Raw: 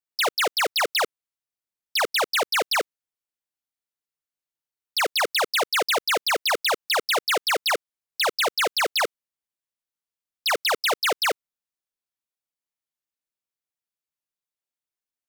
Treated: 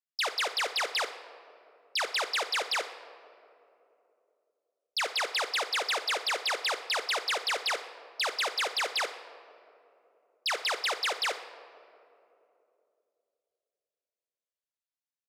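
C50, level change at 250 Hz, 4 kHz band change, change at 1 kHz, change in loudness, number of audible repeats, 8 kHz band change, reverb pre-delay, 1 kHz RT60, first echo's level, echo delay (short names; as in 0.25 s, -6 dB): 10.5 dB, -13.5 dB, -5.5 dB, -8.0 dB, -7.0 dB, 2, -7.5 dB, 9 ms, 2.5 s, -15.0 dB, 61 ms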